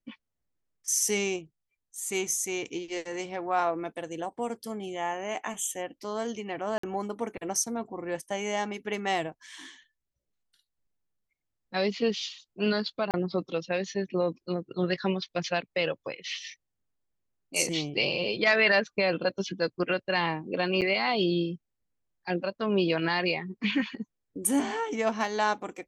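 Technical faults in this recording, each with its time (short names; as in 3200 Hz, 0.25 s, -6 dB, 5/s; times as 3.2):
6.78–6.83 gap 54 ms
13.11–13.14 gap 28 ms
20.81–20.82 gap 8.2 ms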